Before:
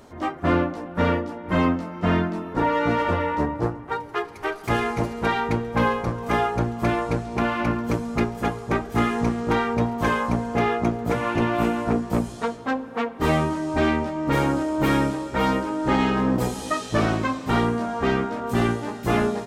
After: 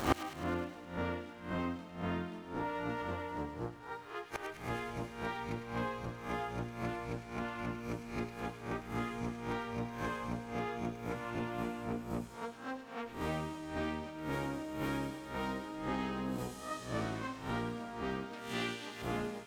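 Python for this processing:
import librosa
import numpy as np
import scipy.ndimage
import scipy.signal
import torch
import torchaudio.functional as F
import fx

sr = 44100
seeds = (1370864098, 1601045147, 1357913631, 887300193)

y = fx.spec_swells(x, sr, rise_s=0.51)
y = fx.weighting(y, sr, curve='D', at=(18.33, 19.02))
y = np.sign(y) * np.maximum(np.abs(y) - 10.0 ** (-46.0 / 20.0), 0.0)
y = fx.dmg_crackle(y, sr, seeds[0], per_s=380.0, level_db=-46.0)
y = fx.gate_flip(y, sr, shuts_db=-27.0, range_db=-30)
y = fx.echo_wet_highpass(y, sr, ms=104, feedback_pct=68, hz=2300.0, wet_db=-6.5)
y = F.gain(torch.from_numpy(y), 13.0).numpy()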